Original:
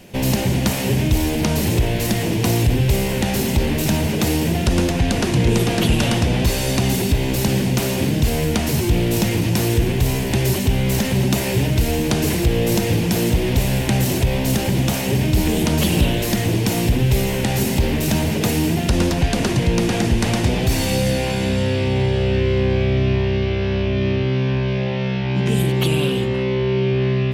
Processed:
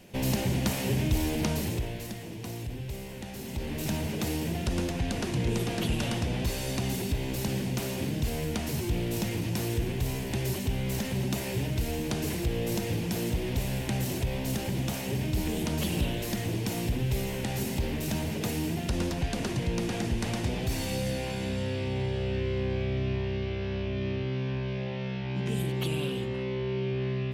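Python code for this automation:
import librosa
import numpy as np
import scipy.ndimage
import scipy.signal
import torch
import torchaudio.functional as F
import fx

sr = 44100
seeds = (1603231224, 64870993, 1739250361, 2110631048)

y = fx.gain(x, sr, db=fx.line((1.46, -9.0), (2.21, -20.0), (3.36, -20.0), (3.87, -12.0)))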